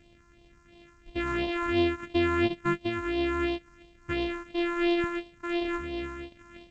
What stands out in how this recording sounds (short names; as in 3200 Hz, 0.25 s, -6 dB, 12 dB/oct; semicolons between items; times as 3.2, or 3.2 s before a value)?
a buzz of ramps at a fixed pitch in blocks of 128 samples; phasing stages 4, 2.9 Hz, lowest notch 570–1400 Hz; G.722